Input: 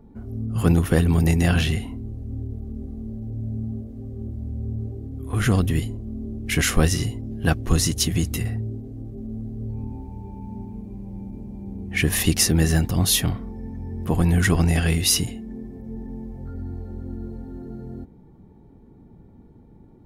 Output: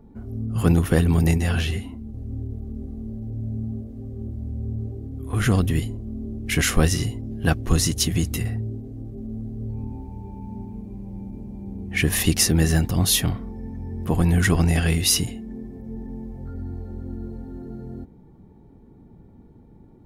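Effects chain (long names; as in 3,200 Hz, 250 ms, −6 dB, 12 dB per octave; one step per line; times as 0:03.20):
0:01.38–0:02.14: string-ensemble chorus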